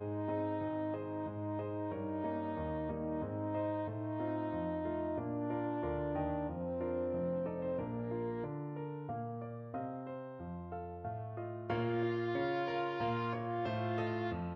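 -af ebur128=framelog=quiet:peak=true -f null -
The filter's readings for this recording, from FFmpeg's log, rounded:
Integrated loudness:
  I:         -38.5 LUFS
  Threshold: -48.5 LUFS
Loudness range:
  LRA:         4.9 LU
  Threshold: -58.8 LUFS
  LRA low:   -42.1 LUFS
  LRA high:  -37.2 LUFS
True peak:
  Peak:      -23.6 dBFS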